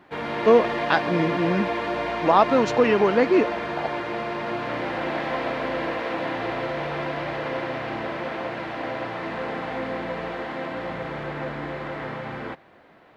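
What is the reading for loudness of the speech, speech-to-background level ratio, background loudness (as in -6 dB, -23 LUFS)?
-21.5 LUFS, 7.0 dB, -28.5 LUFS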